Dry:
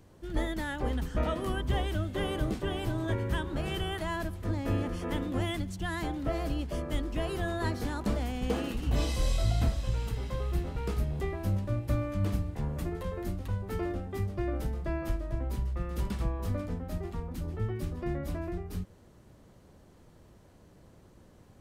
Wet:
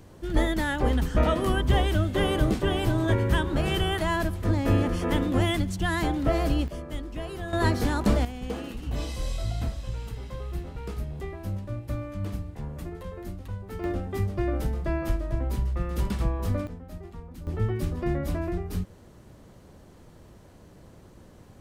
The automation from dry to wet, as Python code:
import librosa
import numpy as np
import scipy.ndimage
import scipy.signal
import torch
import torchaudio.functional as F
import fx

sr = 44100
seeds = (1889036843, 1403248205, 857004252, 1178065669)

y = fx.gain(x, sr, db=fx.steps((0.0, 7.5), (6.68, -2.5), (7.53, 8.0), (8.25, -2.5), (13.84, 5.0), (16.67, -5.0), (17.47, 6.0)))